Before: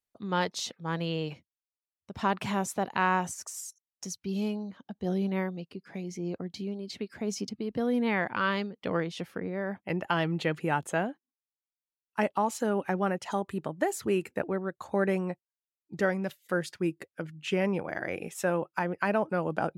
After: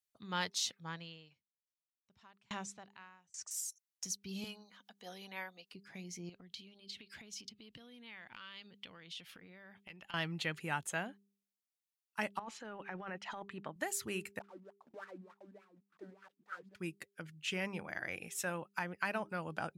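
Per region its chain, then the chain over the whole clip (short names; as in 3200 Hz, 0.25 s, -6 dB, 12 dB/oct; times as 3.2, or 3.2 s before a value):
0.84–3.51 LPF 7600 Hz 24 dB/oct + dB-ramp tremolo decaying 1.2 Hz, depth 35 dB
4.44–5.74 HPF 490 Hz + comb 4.1 ms, depth 37% + upward compressor, threshold -48 dBFS
6.29–10.14 bell 3200 Hz +10.5 dB 0.92 oct + compressor 12:1, threshold -41 dBFS
12.39–13.76 LPF 2700 Hz + bell 63 Hz -15 dB 2.2 oct + negative-ratio compressor -33 dBFS
14.39–16.75 block floating point 3-bit + echo 0.468 s -7 dB + wah 3.4 Hz 210–1400 Hz, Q 7.7
whole clip: passive tone stack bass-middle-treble 5-5-5; de-hum 199.9 Hz, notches 2; gain +6 dB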